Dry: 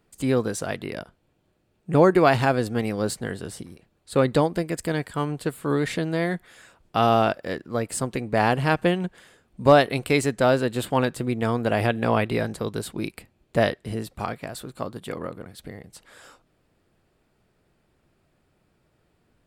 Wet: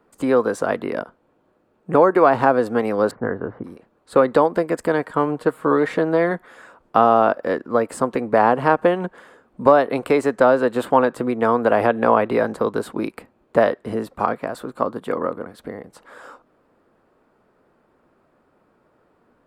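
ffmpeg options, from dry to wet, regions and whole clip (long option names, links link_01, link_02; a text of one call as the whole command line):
ffmpeg -i in.wav -filter_complex "[0:a]asettb=1/sr,asplit=3[link_01][link_02][link_03];[link_01]atrim=end=3.114[link_04];[link_02]atrim=start=3.11:end=3.64,asetpts=PTS-STARTPTS,afade=type=in:duration=0.004:curve=qsin,afade=type=out:start_time=0.526:duration=0.004:curve=qsin,agate=range=-33dB:threshold=-44dB:ratio=3:release=100:detection=peak,lowpass=frequency=1800:width=0.5412,lowpass=frequency=1800:width=1.3066,equalizer=frequency=110:width_type=o:width=0.43:gain=8[link_05];[link_03]atrim=start=3.636[link_06];[link_04][link_05]acrossfade=duration=0.004:curve1=hsin:curve2=qsin[link_07];[link_07][link_06]acrossfade=duration=0.004:curve1=qsin:curve2=hsin,asettb=1/sr,asplit=3[link_08][link_09][link_10];[link_08]atrim=end=5.054[link_11];[link_09]atrim=start=5.05:end=6.31,asetpts=PTS-STARTPTS,afade=type=in:duration=0.004:curve=qsin,afade=type=out:start_time=1.256:duration=0.004:curve=qsin,highshelf=frequency=4800:gain=-4.5,aecho=1:1:6.4:0.37,atrim=end_sample=55566[link_12];[link_10]atrim=start=6.306[link_13];[link_11][link_12]acrossfade=duration=0.004:curve1=hsin:curve2=qsin[link_14];[link_14][link_13]acrossfade=duration=0.004:curve1=qsin:curve2=hsin,equalizer=frequency=250:width_type=o:width=1:gain=11,equalizer=frequency=500:width_type=o:width=1:gain=11,equalizer=frequency=1000:width_type=o:width=1:gain=9,acrossover=split=410|1200[link_15][link_16][link_17];[link_15]acompressor=threshold=-18dB:ratio=4[link_18];[link_16]acompressor=threshold=-10dB:ratio=4[link_19];[link_17]acompressor=threshold=-26dB:ratio=4[link_20];[link_18][link_19][link_20]amix=inputs=3:normalize=0,equalizer=frequency=1400:width=1:gain=9,volume=-5.5dB" out.wav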